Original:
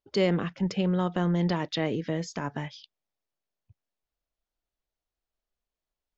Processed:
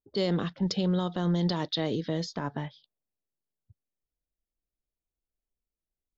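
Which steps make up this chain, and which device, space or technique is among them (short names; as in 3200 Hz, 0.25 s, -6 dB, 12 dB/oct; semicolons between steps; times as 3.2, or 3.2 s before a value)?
LPF 5800 Hz 12 dB/oct; over-bright horn tweeter (resonant high shelf 3100 Hz +7 dB, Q 3; limiter -18.5 dBFS, peak gain reduction 9 dB); low-pass opened by the level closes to 410 Hz, open at -23.5 dBFS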